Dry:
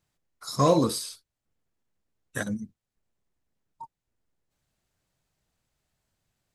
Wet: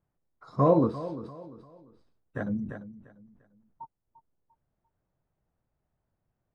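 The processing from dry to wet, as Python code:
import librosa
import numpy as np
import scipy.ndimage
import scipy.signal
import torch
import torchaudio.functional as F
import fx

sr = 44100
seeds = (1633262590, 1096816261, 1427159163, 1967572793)

y = scipy.signal.sosfilt(scipy.signal.butter(2, 1100.0, 'lowpass', fs=sr, output='sos'), x)
y = fx.echo_feedback(y, sr, ms=346, feedback_pct=34, wet_db=-15)
y = fx.sustainer(y, sr, db_per_s=54.0, at=(1.06, 3.82))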